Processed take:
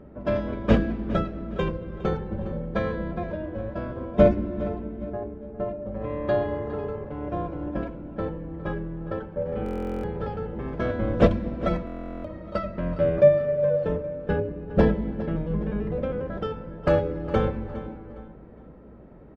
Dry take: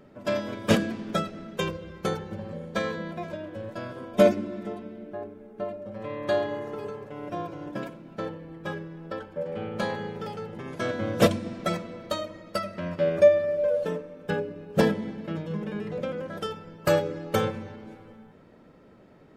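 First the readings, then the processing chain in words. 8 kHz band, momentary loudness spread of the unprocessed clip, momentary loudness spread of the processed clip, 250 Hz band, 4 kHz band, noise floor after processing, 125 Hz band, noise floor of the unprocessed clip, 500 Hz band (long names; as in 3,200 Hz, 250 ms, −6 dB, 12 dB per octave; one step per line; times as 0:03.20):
below −15 dB, 14 LU, 12 LU, +3.0 dB, −8.5 dB, −46 dBFS, +5.5 dB, −53 dBFS, +1.5 dB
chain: sub-octave generator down 2 octaves, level −3 dB
in parallel at −3 dB: downward compressor, threshold −34 dBFS, peak gain reduction 20.5 dB
on the sum: head-to-tape spacing loss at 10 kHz 33 dB
on a send: repeating echo 410 ms, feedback 37%, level −14.5 dB
on the sum: buffer that repeats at 0:09.64/0:11.85, samples 1,024, times 16
one half of a high-frequency compander decoder only
level +2 dB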